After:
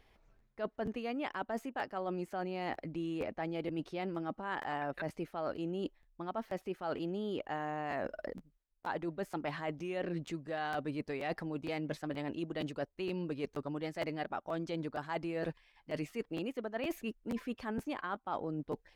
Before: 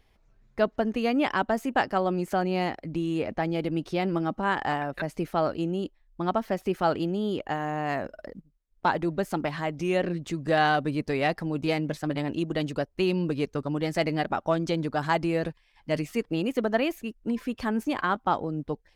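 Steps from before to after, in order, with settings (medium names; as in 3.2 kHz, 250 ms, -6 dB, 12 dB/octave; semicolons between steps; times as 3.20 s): tone controls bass -5 dB, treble -5 dB; reverse; compression 12:1, threshold -35 dBFS, peak gain reduction 17.5 dB; reverse; crackling interface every 0.47 s, samples 512, repeat, from 0.38 s; trim +1 dB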